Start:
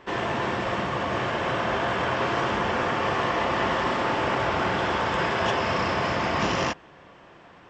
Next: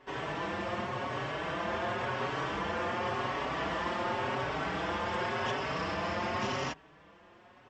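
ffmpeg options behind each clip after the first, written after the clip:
-filter_complex "[0:a]areverse,acompressor=mode=upward:threshold=0.00562:ratio=2.5,areverse,asplit=2[s0][s1];[s1]adelay=4.9,afreqshift=0.91[s2];[s0][s2]amix=inputs=2:normalize=1,volume=0.531"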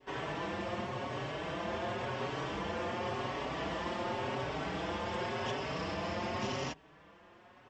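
-af "adynamicequalizer=threshold=0.00398:dfrequency=1400:dqfactor=1:tfrequency=1400:tqfactor=1:attack=5:release=100:ratio=0.375:range=3:mode=cutabove:tftype=bell,volume=0.891"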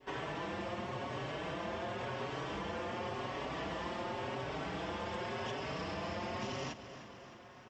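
-af "aecho=1:1:306|612|918|1224|1530|1836:0.141|0.0833|0.0492|0.029|0.0171|0.0101,acompressor=threshold=0.0112:ratio=3,volume=1.19"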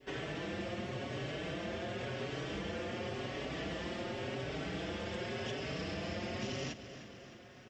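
-af "equalizer=f=980:t=o:w=0.75:g=-13,volume=1.33"

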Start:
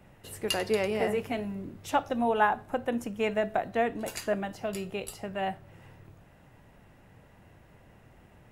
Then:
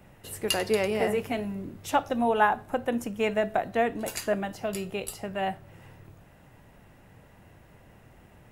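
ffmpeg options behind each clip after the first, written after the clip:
-af "highshelf=f=8700:g=5,volume=1.26"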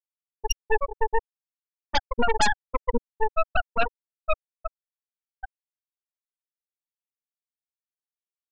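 -af "afftfilt=real='re*gte(hypot(re,im),0.501)':imag='im*gte(hypot(re,im),0.501)':win_size=1024:overlap=0.75,aeval=exprs='0.188*(cos(1*acos(clip(val(0)/0.188,-1,1)))-cos(1*PI/2))+0.0841*(cos(8*acos(clip(val(0)/0.188,-1,1)))-cos(8*PI/2))':c=same"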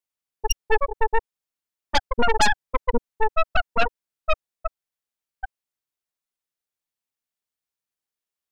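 -af "asoftclip=type=tanh:threshold=0.188,volume=1.88"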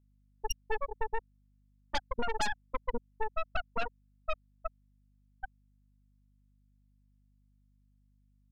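-af "acompressor=threshold=0.112:ratio=4,aeval=exprs='val(0)+0.00126*(sin(2*PI*50*n/s)+sin(2*PI*2*50*n/s)/2+sin(2*PI*3*50*n/s)/3+sin(2*PI*4*50*n/s)/4+sin(2*PI*5*50*n/s)/5)':c=same,volume=0.376"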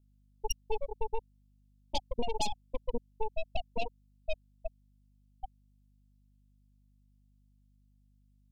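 -af "asuperstop=centerf=1500:order=8:qfactor=0.88,volume=1.19"

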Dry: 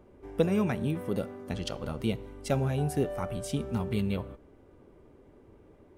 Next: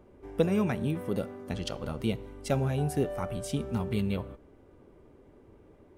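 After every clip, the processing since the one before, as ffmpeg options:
-af anull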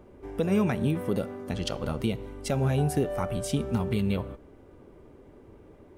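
-af "alimiter=limit=0.1:level=0:latency=1:release=136,volume=1.68"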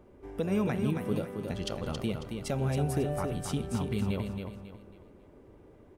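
-af "aecho=1:1:273|546|819|1092:0.501|0.175|0.0614|0.0215,volume=0.596"

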